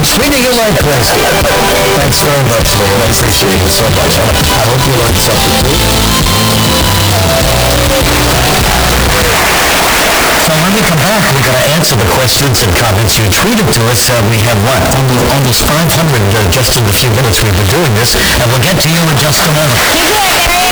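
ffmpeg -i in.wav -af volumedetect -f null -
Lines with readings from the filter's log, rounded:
mean_volume: -8.1 dB
max_volume: -3.4 dB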